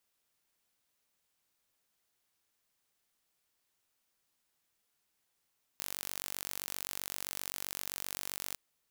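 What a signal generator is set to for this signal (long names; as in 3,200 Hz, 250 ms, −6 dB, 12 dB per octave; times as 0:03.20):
impulse train 47.7 per second, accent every 0, −11.5 dBFS 2.76 s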